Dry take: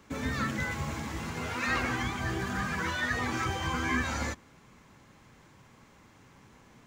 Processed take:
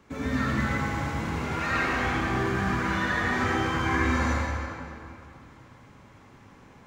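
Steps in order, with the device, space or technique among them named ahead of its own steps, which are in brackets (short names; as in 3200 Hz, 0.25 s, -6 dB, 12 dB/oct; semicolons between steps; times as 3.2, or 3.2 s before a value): swimming-pool hall (reverb RT60 2.7 s, pre-delay 54 ms, DRR -4.5 dB; high shelf 3500 Hz -7 dB)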